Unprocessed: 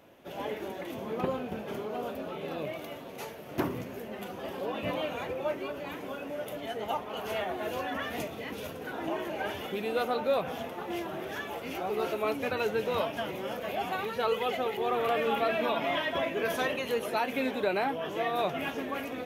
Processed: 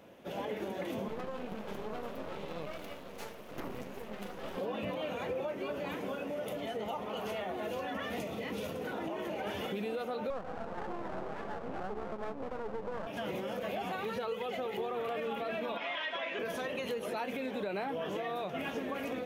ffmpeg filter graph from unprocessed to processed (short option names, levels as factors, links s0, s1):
-filter_complex "[0:a]asettb=1/sr,asplit=3[s0][s1][s2];[s0]atrim=end=1.084[s3];[s1]atrim=start=1.08:end=4.57,asetpts=PTS-STARTPTS,afade=t=in:d=0.004:c=qsin,afade=t=out:st=3.486:d=0.004:c=qsin,highpass=f=210:p=1,aeval=exprs='max(val(0),0)':c=same[s4];[s2]atrim=start=4.566[s5];[s3][s4]acrossfade=d=0.004:c1=hsin:c2=qsin[s6];[s6][s5]acrossfade=d=0.004:c1=qsin:c2=hsin,asettb=1/sr,asplit=3[s7][s8][s9];[s7]atrim=end=6.254[s10];[s8]atrim=start=6.25:end=9.47,asetpts=PTS-STARTPTS,afade=t=in:d=0.004:c=qsin,afade=t=out:st=3.216:d=0.004:c=qsin,bandreject=f=1600:w=14,acompressor=threshold=0.0178:ratio=3:attack=3.2:release=140:knee=1:detection=peak[s11];[s9]atrim=start=9.466[s12];[s10][s11]acrossfade=d=0.004:c1=hsin:c2=qsin[s13];[s13][s12]acrossfade=d=0.004:c1=qsin:c2=hsin,asettb=1/sr,asplit=3[s14][s15][s16];[s14]atrim=end=10.304[s17];[s15]atrim=start=10.3:end=13.07,asetpts=PTS-STARTPTS,afade=t=in:d=0.004:c=qsin,afade=t=out:st=2.766:d=0.004:c=qsin,lowpass=f=900:t=q:w=2.1,aeval=exprs='max(val(0),0)':c=same[s18];[s16]atrim=start=13.066[s19];[s17][s18]acrossfade=d=0.004:c1=hsin:c2=qsin[s20];[s20][s19]acrossfade=d=0.004:c1=qsin:c2=hsin,asettb=1/sr,asplit=3[s21][s22][s23];[s21]atrim=end=15.774[s24];[s22]atrim=start=15.77:end=16.39,asetpts=PTS-STARTPTS,afade=t=in:d=0.004:c=qsin,afade=t=out:st=0.616:d=0.004:c=qsin,highpass=200,lowpass=3800,tiltshelf=f=700:g=-9.5[s25];[s23]atrim=start=16.386[s26];[s24][s25]acrossfade=d=0.004:c1=hsin:c2=qsin[s27];[s27][s26]acrossfade=d=0.004:c1=qsin:c2=hsin,equalizer=f=200:t=o:w=0.33:g=7,equalizer=f=500:t=o:w=0.33:g=4,equalizer=f=12500:t=o:w=0.33:g=-5,acompressor=threshold=0.0282:ratio=6,alimiter=level_in=1.58:limit=0.0631:level=0:latency=1:release=76,volume=0.631"